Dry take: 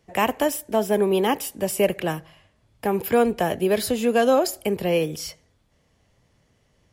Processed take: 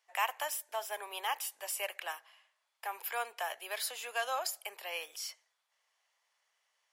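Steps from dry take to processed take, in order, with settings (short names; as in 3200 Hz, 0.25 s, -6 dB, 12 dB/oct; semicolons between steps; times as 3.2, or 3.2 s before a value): HPF 840 Hz 24 dB/oct; gain -7.5 dB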